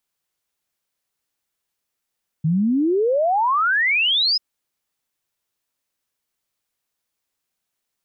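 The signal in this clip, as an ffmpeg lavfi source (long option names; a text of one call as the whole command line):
ffmpeg -f lavfi -i "aevalsrc='0.168*clip(min(t,1.94-t)/0.01,0,1)*sin(2*PI*150*1.94/log(5200/150)*(exp(log(5200/150)*t/1.94)-1))':duration=1.94:sample_rate=44100" out.wav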